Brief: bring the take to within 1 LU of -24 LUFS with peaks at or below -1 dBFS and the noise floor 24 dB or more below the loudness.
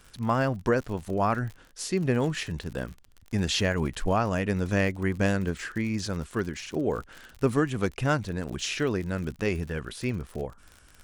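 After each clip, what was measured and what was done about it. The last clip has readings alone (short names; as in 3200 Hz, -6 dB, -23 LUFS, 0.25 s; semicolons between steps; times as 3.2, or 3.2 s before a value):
ticks 55/s; loudness -28.5 LUFS; peak -10.0 dBFS; loudness target -24.0 LUFS
-> de-click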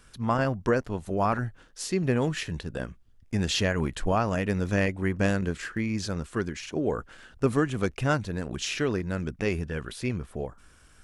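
ticks 0.18/s; loudness -29.0 LUFS; peak -10.0 dBFS; loudness target -24.0 LUFS
-> gain +5 dB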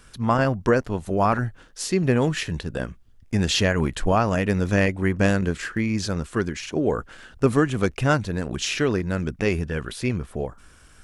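loudness -24.0 LUFS; peak -5.0 dBFS; noise floor -51 dBFS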